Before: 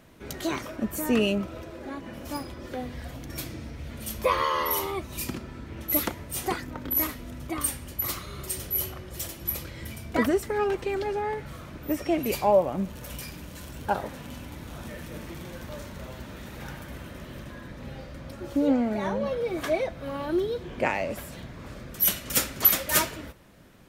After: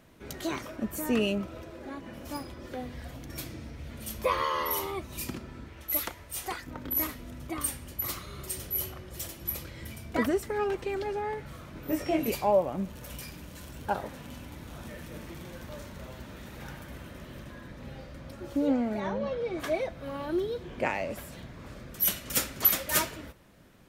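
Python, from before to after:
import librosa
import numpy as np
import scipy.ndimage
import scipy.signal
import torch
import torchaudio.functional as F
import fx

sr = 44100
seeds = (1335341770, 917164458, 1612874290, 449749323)

y = fx.peak_eq(x, sr, hz=200.0, db=-11.0, octaves=2.4, at=(5.69, 6.67))
y = fx.doubler(y, sr, ms=22.0, db=-2.0, at=(11.74, 12.3))
y = fx.lowpass(y, sr, hz=6200.0, slope=12, at=(19.0, 19.6))
y = y * librosa.db_to_amplitude(-3.5)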